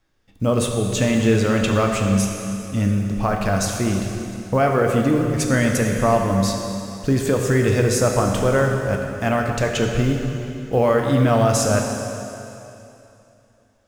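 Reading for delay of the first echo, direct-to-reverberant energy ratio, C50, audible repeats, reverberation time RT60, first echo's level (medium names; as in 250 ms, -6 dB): no echo, 1.5 dB, 3.0 dB, no echo, 2.9 s, no echo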